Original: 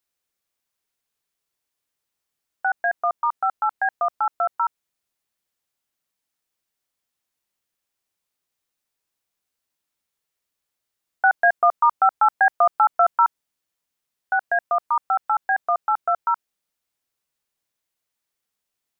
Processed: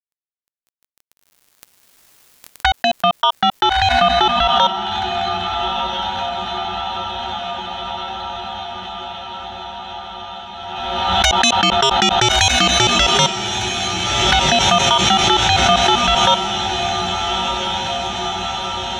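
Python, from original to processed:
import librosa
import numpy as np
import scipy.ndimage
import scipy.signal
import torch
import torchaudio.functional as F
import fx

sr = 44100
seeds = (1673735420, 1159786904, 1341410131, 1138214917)

p1 = scipy.signal.sosfilt(scipy.signal.butter(4, 660.0, 'highpass', fs=sr, output='sos'), x)
p2 = fx.fold_sine(p1, sr, drive_db=12, ceiling_db=-8.0)
p3 = p1 + (p2 * librosa.db_to_amplitude(-4.0))
p4 = fx.env_flanger(p3, sr, rest_ms=11.3, full_db=-15.5)
p5 = fx.quant_dither(p4, sr, seeds[0], bits=10, dither='none')
p6 = p5 + fx.echo_diffused(p5, sr, ms=1364, feedback_pct=71, wet_db=-5.0, dry=0)
p7 = fx.pre_swell(p6, sr, db_per_s=28.0)
y = p7 * librosa.db_to_amplitude(3.5)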